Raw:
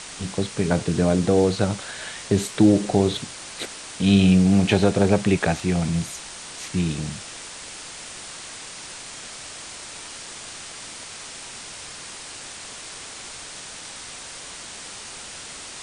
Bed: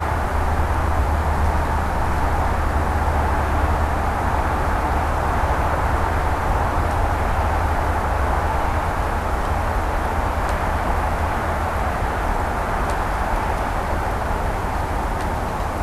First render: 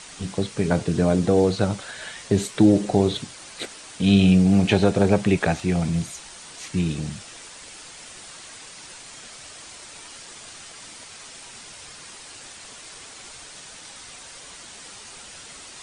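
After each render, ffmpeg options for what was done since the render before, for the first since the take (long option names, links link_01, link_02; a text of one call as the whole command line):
ffmpeg -i in.wav -af "afftdn=noise_reduction=6:noise_floor=-38" out.wav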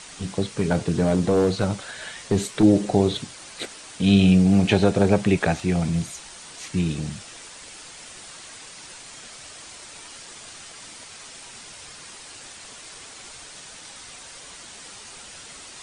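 ffmpeg -i in.wav -filter_complex "[0:a]asettb=1/sr,asplit=3[link_01][link_02][link_03];[link_01]atrim=end=0.544[link_04];[link_02]atrim=start=0.54:end=2.63,asetpts=PTS-STARTPTS,afade=type=in:duration=0.004:curve=qsin,afade=type=out:start_time=2.086:duration=0.004:curve=qsin,volume=13dB,asoftclip=hard,volume=-13dB[link_05];[link_03]atrim=start=2.626[link_06];[link_04][link_05]acrossfade=duration=0.004:curve1=hsin:curve2=qsin[link_07];[link_07][link_06]acrossfade=duration=0.004:curve1=qsin:curve2=hsin" out.wav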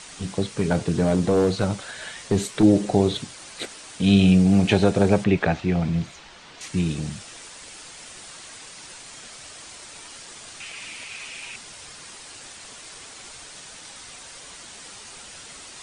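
ffmpeg -i in.wav -filter_complex "[0:a]asettb=1/sr,asplit=3[link_01][link_02][link_03];[link_01]atrim=end=5.244[link_04];[link_02]atrim=start=5.24:end=6.61,asetpts=PTS-STARTPTS,afade=type=in:duration=0.004:curve=qsin,afade=type=out:start_time=1.366:duration=0.004:curve=qsin,lowpass=3800[link_05];[link_03]atrim=start=6.606[link_06];[link_04][link_05]acrossfade=duration=0.004:curve1=hsin:curve2=qsin[link_07];[link_07][link_06]acrossfade=duration=0.004:curve1=qsin:curve2=hsin,asettb=1/sr,asplit=3[link_08][link_09][link_10];[link_08]atrim=end=10.604[link_11];[link_09]atrim=start=10.6:end=11.56,asetpts=PTS-STARTPTS,afade=type=in:duration=0.004:curve=qsin,afade=type=out:start_time=0.956:duration=0.004:curve=qsin,equalizer=frequency=2500:width_type=o:width=0.57:gain=14.5[link_12];[link_10]atrim=start=11.556[link_13];[link_11][link_12]acrossfade=duration=0.004:curve1=hsin:curve2=qsin[link_14];[link_14][link_13]acrossfade=duration=0.004:curve1=qsin:curve2=hsin" out.wav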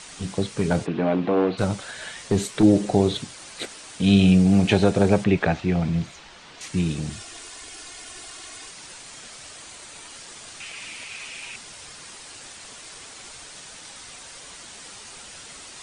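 ffmpeg -i in.wav -filter_complex "[0:a]asplit=3[link_01][link_02][link_03];[link_01]afade=type=out:start_time=0.85:duration=0.02[link_04];[link_02]highpass=230,equalizer=frequency=270:width_type=q:width=4:gain=4,equalizer=frequency=460:width_type=q:width=4:gain=-3,equalizer=frequency=760:width_type=q:width=4:gain=3,equalizer=frequency=1100:width_type=q:width=4:gain=3,equalizer=frequency=2500:width_type=q:width=4:gain=4,lowpass=frequency=3300:width=0.5412,lowpass=frequency=3300:width=1.3066,afade=type=in:start_time=0.85:duration=0.02,afade=type=out:start_time=1.57:duration=0.02[link_05];[link_03]afade=type=in:start_time=1.57:duration=0.02[link_06];[link_04][link_05][link_06]amix=inputs=3:normalize=0,asettb=1/sr,asplit=3[link_07][link_08][link_09];[link_07]atrim=end=7.094[link_10];[link_08]atrim=start=7.09:end=8.71,asetpts=PTS-STARTPTS,afade=type=in:duration=0.004:curve=qsin,afade=type=out:start_time=1.616:duration=0.004:curve=qsin,aecho=1:1:2.8:0.65,atrim=end_sample=71442[link_11];[link_09]atrim=start=8.706[link_12];[link_10][link_11]acrossfade=duration=0.004:curve1=hsin:curve2=qsin[link_13];[link_13][link_12]acrossfade=duration=0.004:curve1=qsin:curve2=hsin,asettb=1/sr,asplit=3[link_14][link_15][link_16];[link_14]atrim=end=9.564[link_17];[link_15]atrim=start=9.56:end=10.15,asetpts=PTS-STARTPTS,afade=type=in:duration=0.004:curve=qsin,afade=type=out:start_time=0.586:duration=0.004:curve=qsin,bandreject=frequency=5300:width=13[link_18];[link_16]atrim=start=10.146[link_19];[link_17][link_18]acrossfade=duration=0.004:curve1=hsin:curve2=qsin[link_20];[link_20][link_19]acrossfade=duration=0.004:curve1=qsin:curve2=hsin" out.wav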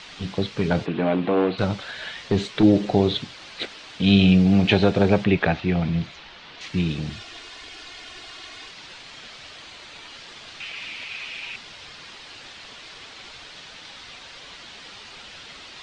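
ffmpeg -i in.wav -af "lowpass=frequency=3900:width=0.5412,lowpass=frequency=3900:width=1.3066,aemphasis=mode=production:type=75kf" out.wav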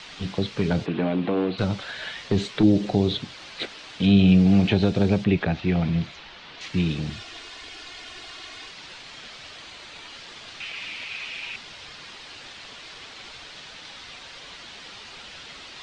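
ffmpeg -i in.wav -filter_complex "[0:a]acrossover=split=1600[link_01][link_02];[link_02]alimiter=limit=-18.5dB:level=0:latency=1:release=174[link_03];[link_01][link_03]amix=inputs=2:normalize=0,acrossover=split=340|3000[link_04][link_05][link_06];[link_05]acompressor=threshold=-27dB:ratio=6[link_07];[link_04][link_07][link_06]amix=inputs=3:normalize=0" out.wav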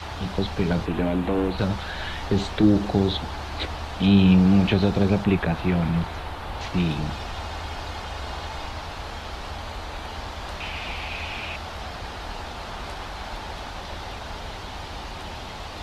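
ffmpeg -i in.wav -i bed.wav -filter_complex "[1:a]volume=-13.5dB[link_01];[0:a][link_01]amix=inputs=2:normalize=0" out.wav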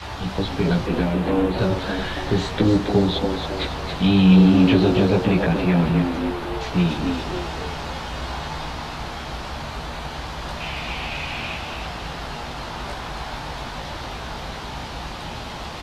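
ffmpeg -i in.wav -filter_complex "[0:a]asplit=2[link_01][link_02];[link_02]adelay=17,volume=-2dB[link_03];[link_01][link_03]amix=inputs=2:normalize=0,asplit=7[link_04][link_05][link_06][link_07][link_08][link_09][link_10];[link_05]adelay=276,afreqshift=91,volume=-6.5dB[link_11];[link_06]adelay=552,afreqshift=182,volume=-13.1dB[link_12];[link_07]adelay=828,afreqshift=273,volume=-19.6dB[link_13];[link_08]adelay=1104,afreqshift=364,volume=-26.2dB[link_14];[link_09]adelay=1380,afreqshift=455,volume=-32.7dB[link_15];[link_10]adelay=1656,afreqshift=546,volume=-39.3dB[link_16];[link_04][link_11][link_12][link_13][link_14][link_15][link_16]amix=inputs=7:normalize=0" out.wav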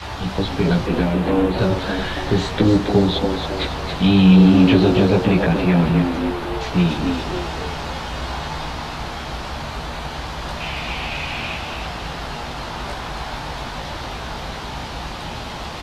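ffmpeg -i in.wav -af "volume=2.5dB,alimiter=limit=-3dB:level=0:latency=1" out.wav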